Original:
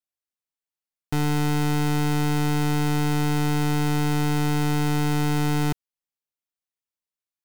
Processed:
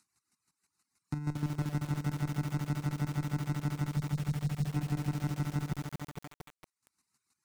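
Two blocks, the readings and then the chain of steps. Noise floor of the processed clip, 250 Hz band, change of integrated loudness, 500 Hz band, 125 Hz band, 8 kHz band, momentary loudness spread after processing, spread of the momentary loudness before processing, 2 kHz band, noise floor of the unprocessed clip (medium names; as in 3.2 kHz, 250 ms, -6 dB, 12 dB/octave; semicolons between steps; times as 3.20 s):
under -85 dBFS, -12.0 dB, -11.0 dB, -17.0 dB, -8.5 dB, -15.0 dB, 8 LU, 2 LU, -15.5 dB, under -85 dBFS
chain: cabinet simulation 140–9900 Hz, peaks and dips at 520 Hz -10 dB, 1.7 kHz -7 dB, 3.9 kHz +9 dB; waveshaping leveller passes 2; bass shelf 190 Hz +10 dB; static phaser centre 1.4 kHz, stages 4; square tremolo 6.3 Hz, depth 60%, duty 20%; spectral selection erased 3.89–4.74 s, 220–3500 Hz; upward compressor, threshold -38 dBFS; reverb removal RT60 0.96 s; Chebyshev shaper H 3 -14 dB, 5 -42 dB, 7 -41 dB, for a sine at -3.5 dBFS; peak limiter -23.5 dBFS, peak gain reduction 6 dB; bit-crushed delay 229 ms, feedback 80%, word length 7-bit, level -4 dB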